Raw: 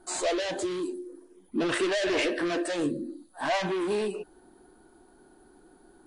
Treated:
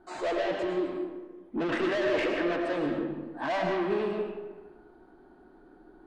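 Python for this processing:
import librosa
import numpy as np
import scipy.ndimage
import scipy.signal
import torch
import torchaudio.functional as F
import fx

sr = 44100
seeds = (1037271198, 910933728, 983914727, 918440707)

y = scipy.signal.sosfilt(scipy.signal.butter(2, 2400.0, 'lowpass', fs=sr, output='sos'), x)
y = fx.tube_stage(y, sr, drive_db=25.0, bias=0.2)
y = fx.rev_freeverb(y, sr, rt60_s=1.3, hf_ratio=0.6, predelay_ms=70, drr_db=2.0)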